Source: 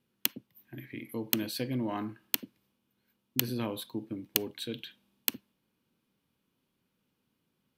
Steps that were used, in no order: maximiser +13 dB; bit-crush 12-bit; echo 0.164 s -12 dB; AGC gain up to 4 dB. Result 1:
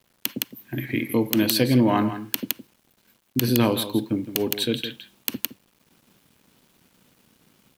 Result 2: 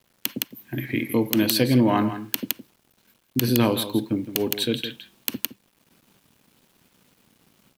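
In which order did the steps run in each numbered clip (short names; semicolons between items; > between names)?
echo > AGC > bit-crush > maximiser; AGC > bit-crush > echo > maximiser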